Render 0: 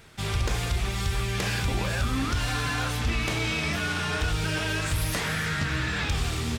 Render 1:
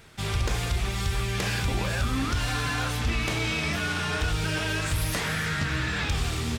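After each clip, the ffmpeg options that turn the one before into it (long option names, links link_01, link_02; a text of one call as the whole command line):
ffmpeg -i in.wav -af anull out.wav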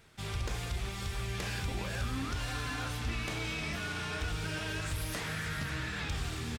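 ffmpeg -i in.wav -af "aecho=1:1:548:0.282,volume=-9dB" out.wav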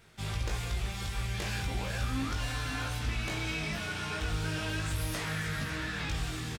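ffmpeg -i in.wav -filter_complex "[0:a]asplit=2[link_01][link_02];[link_02]adelay=19,volume=-3.5dB[link_03];[link_01][link_03]amix=inputs=2:normalize=0" out.wav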